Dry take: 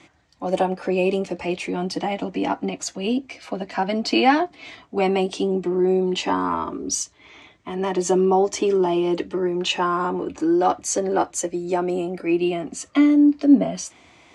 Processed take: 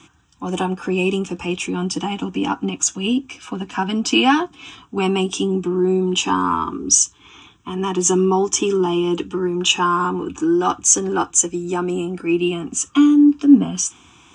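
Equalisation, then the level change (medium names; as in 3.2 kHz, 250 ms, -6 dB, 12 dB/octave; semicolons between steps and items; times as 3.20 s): treble shelf 9 kHz +8 dB; dynamic bell 6.8 kHz, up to +4 dB, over -36 dBFS, Q 0.73; static phaser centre 3 kHz, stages 8; +6.0 dB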